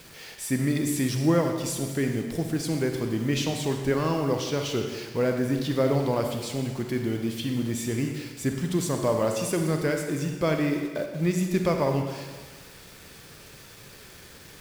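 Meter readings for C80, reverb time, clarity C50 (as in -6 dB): 6.0 dB, 1.4 s, 4.5 dB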